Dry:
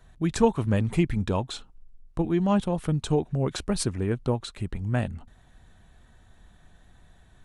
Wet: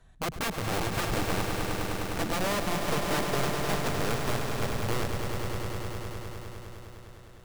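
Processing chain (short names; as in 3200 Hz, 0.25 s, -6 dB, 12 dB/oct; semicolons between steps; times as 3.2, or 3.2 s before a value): treble ducked by the level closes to 420 Hz, closed at -24 dBFS; wrapped overs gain 22 dB; swelling echo 0.102 s, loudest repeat 5, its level -8 dB; gain -3.5 dB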